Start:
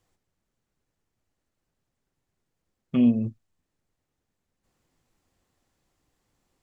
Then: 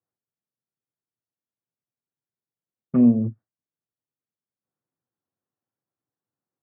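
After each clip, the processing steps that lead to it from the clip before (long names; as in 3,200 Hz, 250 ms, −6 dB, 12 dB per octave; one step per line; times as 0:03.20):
elliptic band-pass filter 110–1,600 Hz
noise gate with hold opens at −45 dBFS
level +4.5 dB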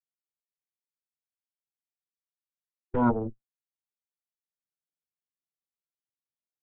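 time-frequency box erased 0:00.62–0:03.13, 360–790 Hz
harmonic generator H 3 −12 dB, 6 −9 dB, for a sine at −7.5 dBFS
level −7 dB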